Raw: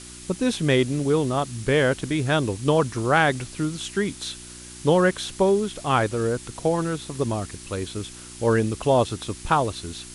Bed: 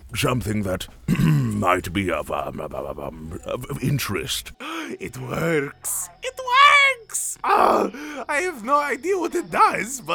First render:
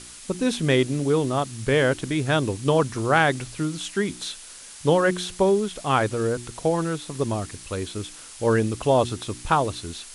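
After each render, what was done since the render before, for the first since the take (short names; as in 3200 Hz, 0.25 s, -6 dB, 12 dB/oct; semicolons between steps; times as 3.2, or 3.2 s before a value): de-hum 60 Hz, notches 6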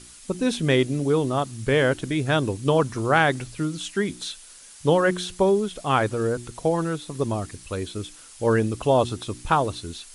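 denoiser 6 dB, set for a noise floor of -43 dBFS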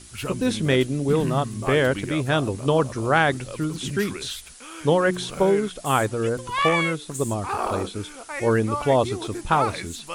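add bed -10 dB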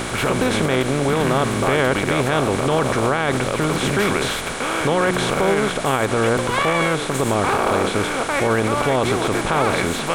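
per-bin compression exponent 0.4; limiter -8.5 dBFS, peak gain reduction 10 dB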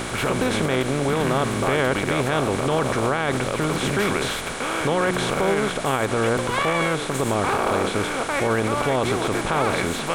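gain -3 dB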